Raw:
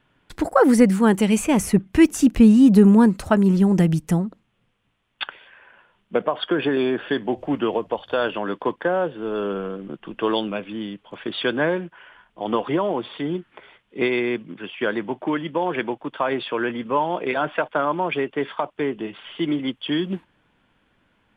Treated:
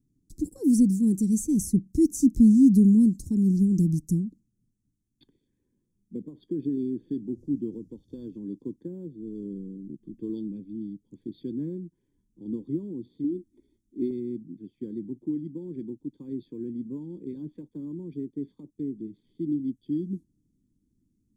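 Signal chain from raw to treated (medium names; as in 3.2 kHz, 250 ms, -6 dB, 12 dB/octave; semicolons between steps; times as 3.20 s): elliptic band-stop 300–6000 Hz, stop band 40 dB; 13.24–14.11 s: comb 3.2 ms, depth 85%; trim -3.5 dB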